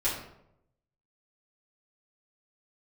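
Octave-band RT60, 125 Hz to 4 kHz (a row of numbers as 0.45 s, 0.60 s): 1.1 s, 0.85 s, 0.85 s, 0.70 s, 0.60 s, 0.45 s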